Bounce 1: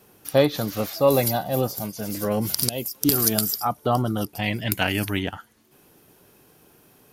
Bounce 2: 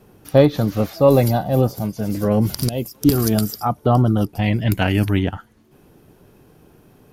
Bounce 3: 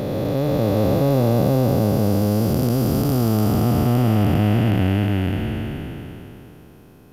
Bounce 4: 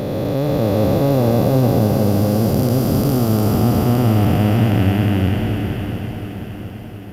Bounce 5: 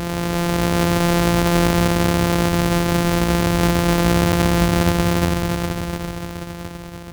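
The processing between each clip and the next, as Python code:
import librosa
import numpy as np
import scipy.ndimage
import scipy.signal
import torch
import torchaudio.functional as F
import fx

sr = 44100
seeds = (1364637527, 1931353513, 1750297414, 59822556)

y1 = fx.tilt_eq(x, sr, slope=-2.5)
y1 = y1 * librosa.db_to_amplitude(2.5)
y2 = fx.spec_blur(y1, sr, span_ms=1410.0)
y2 = y2 * librosa.db_to_amplitude(4.5)
y3 = fx.echo_swing(y2, sr, ms=713, ratio=1.5, feedback_pct=53, wet_db=-10)
y3 = y3 * librosa.db_to_amplitude(2.0)
y4 = np.r_[np.sort(y3[:len(y3) // 256 * 256].reshape(-1, 256), axis=1).ravel(), y3[len(y3) // 256 * 256:]]
y4 = y4 * librosa.db_to_amplitude(-2.0)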